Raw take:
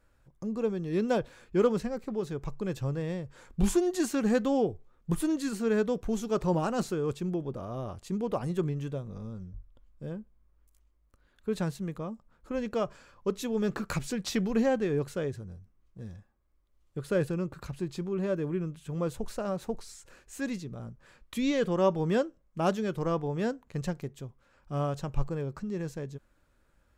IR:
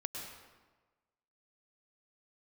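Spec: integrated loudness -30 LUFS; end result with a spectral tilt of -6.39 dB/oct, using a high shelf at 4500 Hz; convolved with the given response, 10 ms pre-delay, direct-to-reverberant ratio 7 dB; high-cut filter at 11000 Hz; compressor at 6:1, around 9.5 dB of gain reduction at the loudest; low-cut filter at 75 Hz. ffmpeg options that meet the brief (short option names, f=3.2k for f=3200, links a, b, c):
-filter_complex "[0:a]highpass=75,lowpass=11k,highshelf=f=4.5k:g=-9,acompressor=threshold=-30dB:ratio=6,asplit=2[a][b];[1:a]atrim=start_sample=2205,adelay=10[c];[b][c]afir=irnorm=-1:irlink=0,volume=-7dB[d];[a][d]amix=inputs=2:normalize=0,volume=6dB"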